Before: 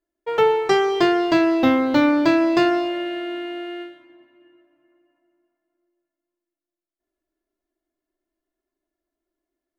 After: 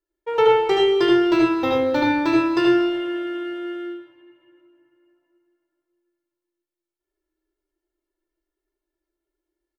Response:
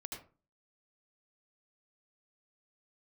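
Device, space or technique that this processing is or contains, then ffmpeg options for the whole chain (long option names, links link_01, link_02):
microphone above a desk: -filter_complex "[0:a]aecho=1:1:2.2:0.7[link_01];[1:a]atrim=start_sample=2205[link_02];[link_01][link_02]afir=irnorm=-1:irlink=0"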